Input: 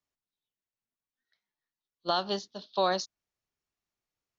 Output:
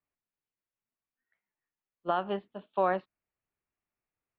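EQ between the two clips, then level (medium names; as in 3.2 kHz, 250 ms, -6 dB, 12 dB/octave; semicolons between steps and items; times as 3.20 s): steep low-pass 2.7 kHz 48 dB/octave; 0.0 dB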